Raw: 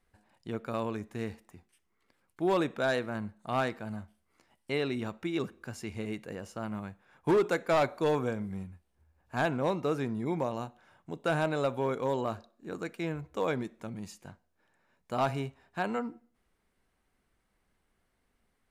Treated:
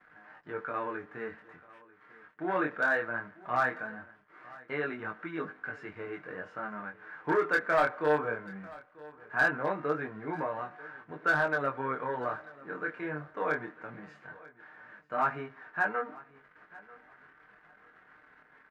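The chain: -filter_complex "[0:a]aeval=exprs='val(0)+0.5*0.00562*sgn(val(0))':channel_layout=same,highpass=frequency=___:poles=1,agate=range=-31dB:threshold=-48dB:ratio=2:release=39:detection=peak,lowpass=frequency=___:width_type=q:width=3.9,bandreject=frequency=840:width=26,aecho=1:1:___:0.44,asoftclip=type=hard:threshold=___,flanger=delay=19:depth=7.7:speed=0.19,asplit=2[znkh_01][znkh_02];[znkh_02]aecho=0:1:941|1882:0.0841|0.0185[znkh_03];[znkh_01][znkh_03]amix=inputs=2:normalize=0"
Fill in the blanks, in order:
350, 1600, 6.6, -15.5dB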